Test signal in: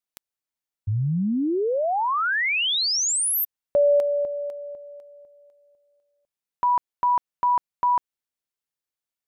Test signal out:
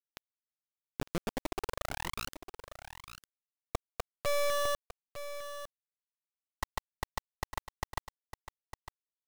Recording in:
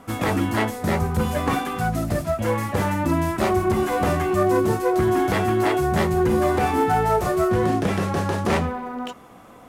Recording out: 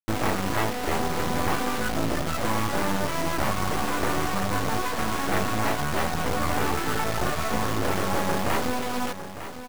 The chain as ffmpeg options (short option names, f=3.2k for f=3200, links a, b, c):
-filter_complex "[0:a]afftfilt=real='re*lt(hypot(re,im),0.447)':imag='im*lt(hypot(re,im),0.447)':win_size=1024:overlap=0.75,lowpass=1.8k,asoftclip=type=tanh:threshold=-16.5dB,acrusher=bits=3:dc=4:mix=0:aa=0.000001,asplit=2[a][b];[b]aecho=0:1:904:0.266[c];[a][c]amix=inputs=2:normalize=0,volume=5dB"